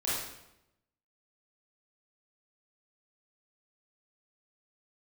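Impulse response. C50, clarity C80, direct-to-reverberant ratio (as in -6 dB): -1.5 dB, 2.5 dB, -9.0 dB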